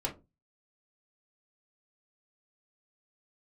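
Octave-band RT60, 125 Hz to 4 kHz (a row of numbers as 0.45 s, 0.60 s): 0.45 s, 0.35 s, 0.30 s, 0.20 s, 0.15 s, 0.15 s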